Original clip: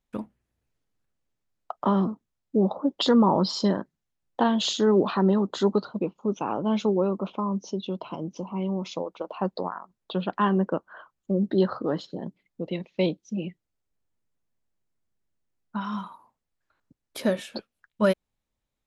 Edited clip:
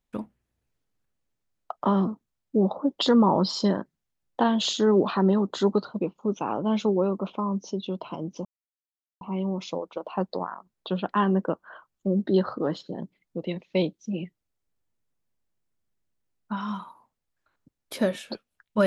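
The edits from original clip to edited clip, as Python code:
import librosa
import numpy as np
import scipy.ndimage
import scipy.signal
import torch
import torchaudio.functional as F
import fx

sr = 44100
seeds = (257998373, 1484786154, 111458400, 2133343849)

y = fx.edit(x, sr, fx.insert_silence(at_s=8.45, length_s=0.76), tone=tone)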